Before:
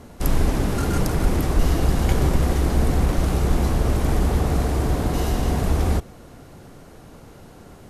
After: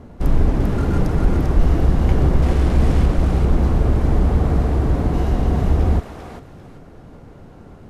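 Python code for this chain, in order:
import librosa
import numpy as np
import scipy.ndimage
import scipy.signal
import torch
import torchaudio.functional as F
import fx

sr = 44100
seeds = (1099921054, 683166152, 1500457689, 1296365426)

y = fx.delta_mod(x, sr, bps=64000, step_db=-21.5, at=(2.42, 3.06))
y = fx.lowpass(y, sr, hz=1600.0, slope=6)
y = fx.low_shelf(y, sr, hz=340.0, db=4.5)
y = np.clip(y, -10.0 ** (-6.5 / 20.0), 10.0 ** (-6.5 / 20.0))
y = fx.echo_thinned(y, sr, ms=395, feedback_pct=29, hz=1000.0, wet_db=-3.5)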